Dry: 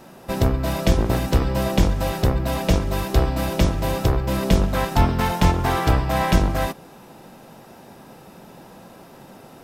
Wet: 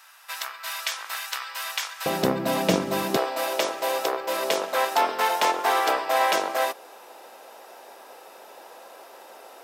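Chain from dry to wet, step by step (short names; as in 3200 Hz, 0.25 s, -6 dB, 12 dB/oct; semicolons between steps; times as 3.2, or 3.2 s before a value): HPF 1200 Hz 24 dB/oct, from 2.06 s 190 Hz, from 3.17 s 450 Hz; gain +1.5 dB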